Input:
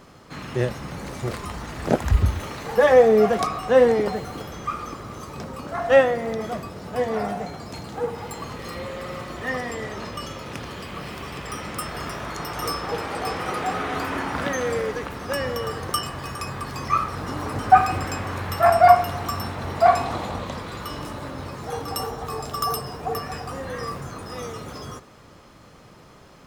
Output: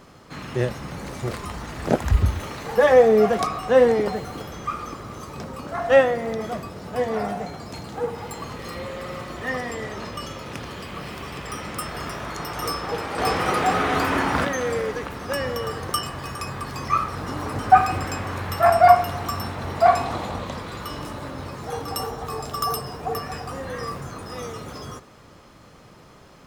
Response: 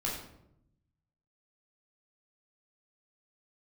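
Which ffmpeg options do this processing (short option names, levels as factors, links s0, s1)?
-filter_complex "[0:a]asettb=1/sr,asplit=3[s0][s1][s2];[s0]atrim=end=13.184[s3];[s1]atrim=start=13.18:end=14.45,asetpts=PTS-STARTPTS,afade=t=in:d=0.004:c=qsin,afade=t=out:st=1.266:d=0.004:c=qsin,acontrast=36[s4];[s2]atrim=start=14.446[s5];[s3][s4]acrossfade=d=0.004:c1=hsin:c2=qsin[s6];[s6][s5]acrossfade=d=0.004:c1=qsin:c2=hsin"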